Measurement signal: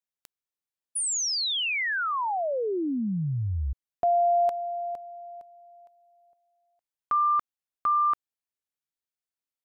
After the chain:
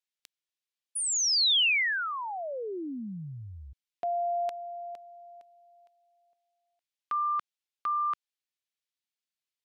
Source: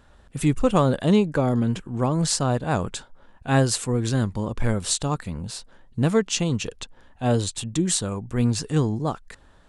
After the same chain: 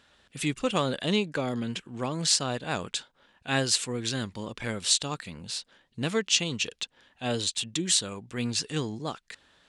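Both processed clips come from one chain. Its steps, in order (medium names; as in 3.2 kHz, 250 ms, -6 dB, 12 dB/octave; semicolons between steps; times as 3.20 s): frequency weighting D; trim -7 dB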